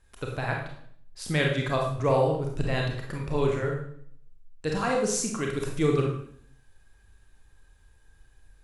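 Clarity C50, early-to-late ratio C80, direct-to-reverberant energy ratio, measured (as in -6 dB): 4.0 dB, 7.5 dB, 0.0 dB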